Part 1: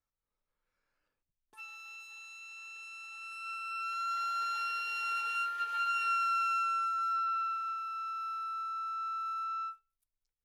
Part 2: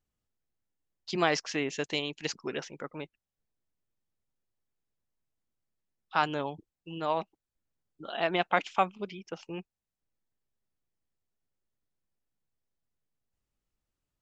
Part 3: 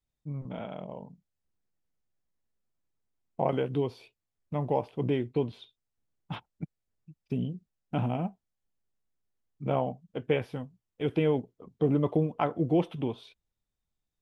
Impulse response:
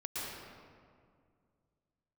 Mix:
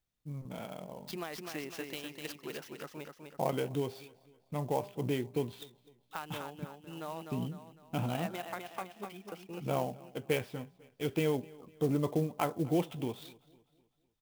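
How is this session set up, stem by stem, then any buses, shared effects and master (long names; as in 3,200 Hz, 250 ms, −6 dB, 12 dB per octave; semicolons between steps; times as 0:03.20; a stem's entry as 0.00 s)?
muted
−5.0 dB, 0.00 s, no send, echo send −5.5 dB, downward compressor 5 to 1, threshold −33 dBFS, peak gain reduction 13 dB
−5.0 dB, 0.00 s, no send, echo send −22.5 dB, high-shelf EQ 2,200 Hz +9 dB; hum removal 200.8 Hz, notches 5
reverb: not used
echo: repeating echo 252 ms, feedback 42%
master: converter with an unsteady clock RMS 0.027 ms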